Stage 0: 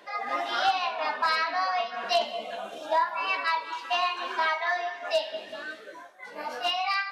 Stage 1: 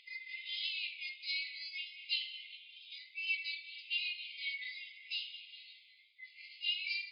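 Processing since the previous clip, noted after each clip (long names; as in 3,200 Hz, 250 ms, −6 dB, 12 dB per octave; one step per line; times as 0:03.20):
brick-wall band-pass 2,000–5,100 Hz
upward compression, threshold −54 dBFS
level −5 dB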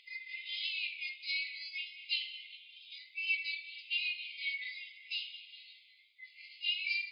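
dynamic equaliser 2,400 Hz, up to +5 dB, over −52 dBFS, Q 4.9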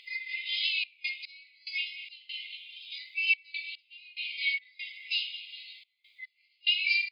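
gate pattern "xxxx.x..xx.x" 72 BPM −24 dB
level +8 dB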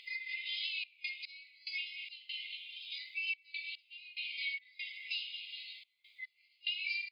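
downward compressor 2.5 to 1, threshold −38 dBFS, peak gain reduction 12 dB
level −1 dB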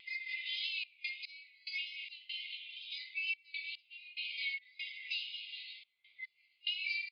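low-pass that shuts in the quiet parts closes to 2,800 Hz, open at −36 dBFS
downsampling to 11,025 Hz
tape wow and flutter 21 cents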